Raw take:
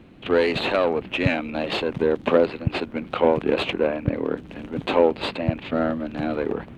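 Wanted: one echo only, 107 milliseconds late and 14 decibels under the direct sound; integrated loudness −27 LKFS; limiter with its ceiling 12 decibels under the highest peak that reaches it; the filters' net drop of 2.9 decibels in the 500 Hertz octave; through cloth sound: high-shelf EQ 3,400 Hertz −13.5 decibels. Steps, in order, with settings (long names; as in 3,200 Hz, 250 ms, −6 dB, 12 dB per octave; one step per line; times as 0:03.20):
parametric band 500 Hz −3 dB
brickwall limiter −18.5 dBFS
high-shelf EQ 3,400 Hz −13.5 dB
single-tap delay 107 ms −14 dB
level +3.5 dB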